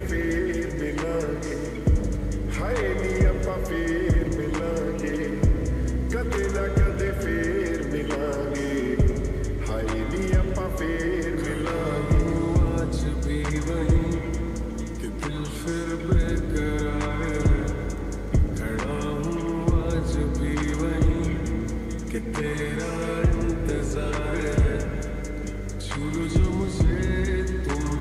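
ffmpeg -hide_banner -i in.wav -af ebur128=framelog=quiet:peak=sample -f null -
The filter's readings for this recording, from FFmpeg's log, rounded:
Integrated loudness:
  I:         -26.1 LUFS
  Threshold: -36.1 LUFS
Loudness range:
  LRA:         1.7 LU
  Threshold: -46.1 LUFS
  LRA low:   -26.9 LUFS
  LRA high:  -25.2 LUFS
Sample peak:
  Peak:      -10.1 dBFS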